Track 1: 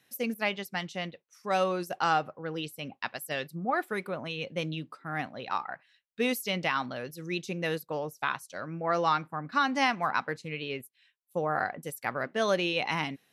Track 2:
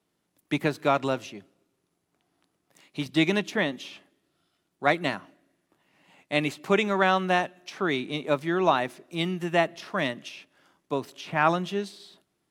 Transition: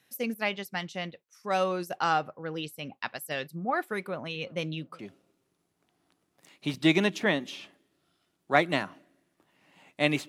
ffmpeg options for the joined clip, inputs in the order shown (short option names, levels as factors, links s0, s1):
-filter_complex "[0:a]asettb=1/sr,asplit=3[s0][s1][s2];[s0]atrim=end=3.984[s3];[s1]atrim=start=3.98:end=4.99,asetpts=PTS-STARTPTS,afade=t=in:d=0.004:c=qsin,afade=t=out:st=1.006:d=0.004:c=qsin,asplit=2[s4][s5];[s5]adelay=365,lowpass=f=970:p=1,volume=0.0841,asplit=2[s6][s7];[s7]adelay=365,lowpass=f=970:p=1,volume=0.25[s8];[s4][s6][s8]amix=inputs=3:normalize=0,atrim=end_sample=44541[s9];[s2]atrim=start=4.986[s10];[s3][s9]acrossfade=d=0.004:c1=hsin:c2=qsin[s11];[s11][s10]acrossfade=d=0.004:c1=qsin:c2=hsin,apad=whole_dur=10.28,atrim=end=10.28,atrim=end=4.992[s12];[1:a]atrim=start=1.308:end=6.6[s13];[s12][s13]acrossfade=d=0.004:c1=hsin:c2=hsin"